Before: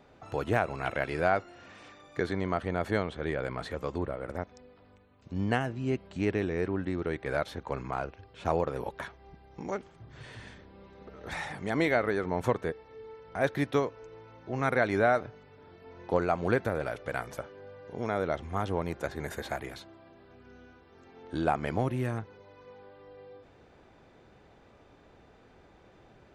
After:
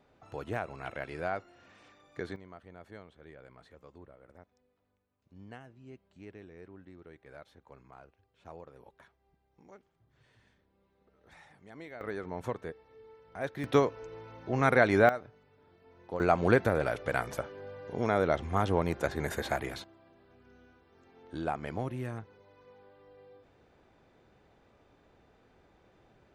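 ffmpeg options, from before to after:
ffmpeg -i in.wav -af "asetnsamples=nb_out_samples=441:pad=0,asendcmd='2.36 volume volume -20dB;12.01 volume volume -8dB;13.64 volume volume 3dB;15.09 volume volume -9.5dB;16.2 volume volume 3dB;19.84 volume volume -6dB',volume=-8dB" out.wav

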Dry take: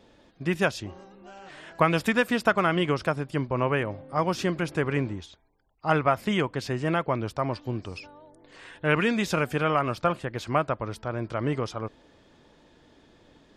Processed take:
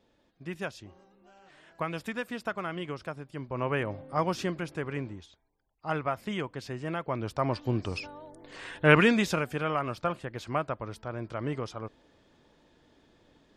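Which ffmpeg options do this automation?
ffmpeg -i in.wav -af "volume=11dB,afade=type=in:start_time=3.37:duration=0.63:silence=0.298538,afade=type=out:start_time=4:duration=0.73:silence=0.446684,afade=type=in:start_time=7.01:duration=0.94:silence=0.251189,afade=type=out:start_time=8.94:duration=0.5:silence=0.334965" out.wav

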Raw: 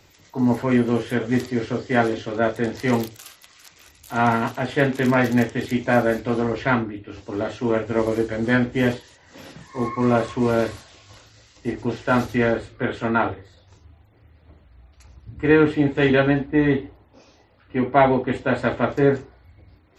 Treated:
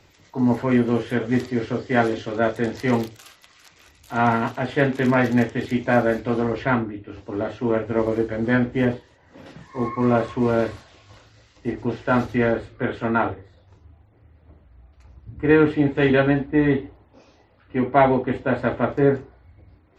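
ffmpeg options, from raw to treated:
ffmpeg -i in.wav -af "asetnsamples=nb_out_samples=441:pad=0,asendcmd='1.97 lowpass f 9700;2.82 lowpass f 4000;6.65 lowpass f 2100;8.85 lowpass f 1100;9.46 lowpass f 2700;13.33 lowpass f 1500;15.49 lowpass f 3500;18.29 lowpass f 1900',lowpass=frequency=4500:poles=1" out.wav

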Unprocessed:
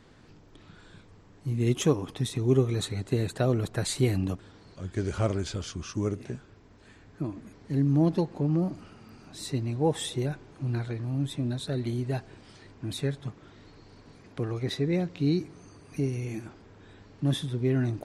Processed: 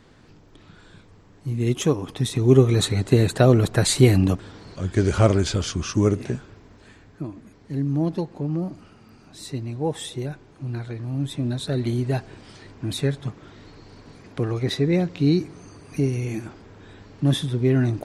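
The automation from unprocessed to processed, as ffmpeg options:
ffmpeg -i in.wav -af "volume=16.5dB,afade=type=in:start_time=1.97:duration=0.87:silence=0.446684,afade=type=out:start_time=6.2:duration=1.08:silence=0.316228,afade=type=in:start_time=10.8:duration=1.06:silence=0.473151" out.wav

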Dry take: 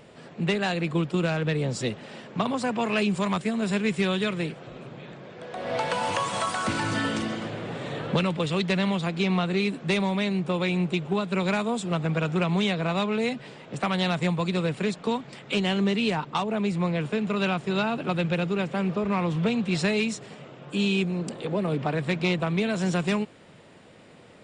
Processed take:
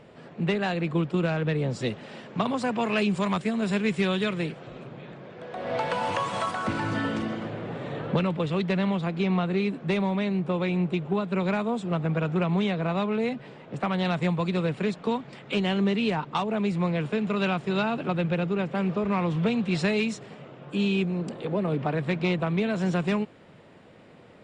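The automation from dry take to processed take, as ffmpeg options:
ffmpeg -i in.wav -af "asetnsamples=nb_out_samples=441:pad=0,asendcmd='1.82 lowpass f 5600;4.84 lowpass f 2800;6.51 lowpass f 1700;14.05 lowpass f 2900;16.31 lowpass f 4500;18.07 lowpass f 2100;18.75 lowpass f 4200;20.23 lowpass f 2500',lowpass=frequency=2500:poles=1" out.wav

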